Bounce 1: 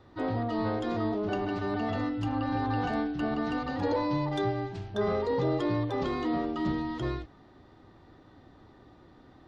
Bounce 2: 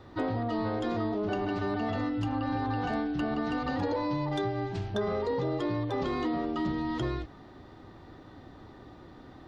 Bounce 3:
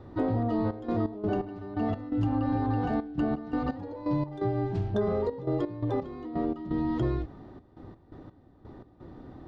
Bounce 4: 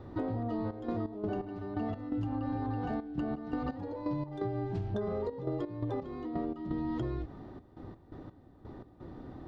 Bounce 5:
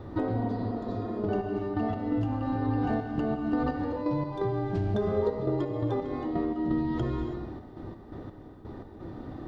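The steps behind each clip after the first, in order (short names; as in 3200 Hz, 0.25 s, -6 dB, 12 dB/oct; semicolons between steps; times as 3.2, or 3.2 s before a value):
compressor, threshold -33 dBFS, peak gain reduction 9 dB; gain +5.5 dB
tilt shelf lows +7 dB, about 1100 Hz; step gate "xxxx.x.x..x.x" 85 bpm -12 dB; gain -2 dB
compressor, threshold -31 dBFS, peak gain reduction 8 dB
non-linear reverb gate 0.35 s flat, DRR 4 dB; spectral repair 0.44–1.1, 210–3300 Hz both; gain +5 dB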